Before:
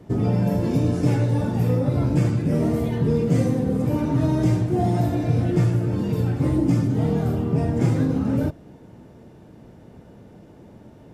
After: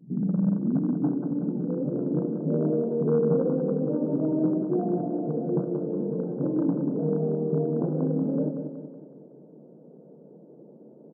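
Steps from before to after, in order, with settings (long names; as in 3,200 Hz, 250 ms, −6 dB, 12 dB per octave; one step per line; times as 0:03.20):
low-pass filter sweep 200 Hz → 490 Hz, 0:00.27–0:02.45
hard clipping −10.5 dBFS, distortion −22 dB
on a send: repeating echo 186 ms, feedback 50%, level −7 dB
on the sum: brick-wall band-pass 130–1,600 Hz
level −7 dB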